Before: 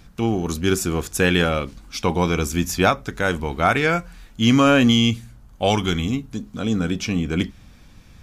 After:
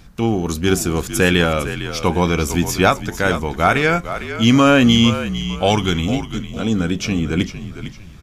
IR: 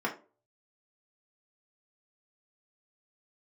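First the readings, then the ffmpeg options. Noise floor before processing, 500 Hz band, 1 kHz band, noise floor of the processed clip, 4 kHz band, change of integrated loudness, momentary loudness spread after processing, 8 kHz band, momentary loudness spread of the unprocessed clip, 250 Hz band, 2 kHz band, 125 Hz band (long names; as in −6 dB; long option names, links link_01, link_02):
−48 dBFS, +3.5 dB, +3.5 dB, −37 dBFS, +3.5 dB, +3.0 dB, 11 LU, +3.5 dB, 10 LU, +3.5 dB, +3.5 dB, +3.5 dB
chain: -filter_complex "[0:a]asplit=4[link_01][link_02][link_03][link_04];[link_02]adelay=454,afreqshift=-50,volume=-11dB[link_05];[link_03]adelay=908,afreqshift=-100,volume=-20.9dB[link_06];[link_04]adelay=1362,afreqshift=-150,volume=-30.8dB[link_07];[link_01][link_05][link_06][link_07]amix=inputs=4:normalize=0,volume=3dB"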